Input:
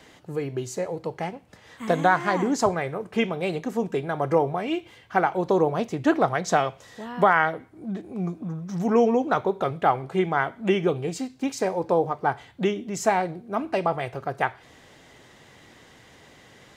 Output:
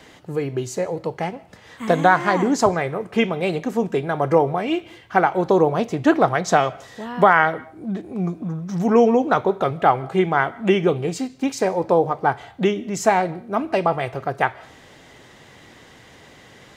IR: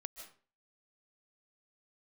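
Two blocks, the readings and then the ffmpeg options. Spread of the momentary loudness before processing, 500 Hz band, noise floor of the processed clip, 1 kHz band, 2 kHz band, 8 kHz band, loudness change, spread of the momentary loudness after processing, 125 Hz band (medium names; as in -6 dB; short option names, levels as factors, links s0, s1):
11 LU, +4.5 dB, -48 dBFS, +4.5 dB, +4.5 dB, +3.5 dB, +4.5 dB, 11 LU, +4.5 dB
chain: -filter_complex "[0:a]asplit=2[s0][s1];[1:a]atrim=start_sample=2205,lowpass=6600[s2];[s1][s2]afir=irnorm=-1:irlink=0,volume=0.251[s3];[s0][s3]amix=inputs=2:normalize=0,volume=1.5"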